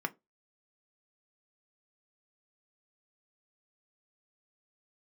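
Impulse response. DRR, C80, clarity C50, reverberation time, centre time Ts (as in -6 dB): 5.5 dB, 33.5 dB, 26.0 dB, 0.20 s, 3 ms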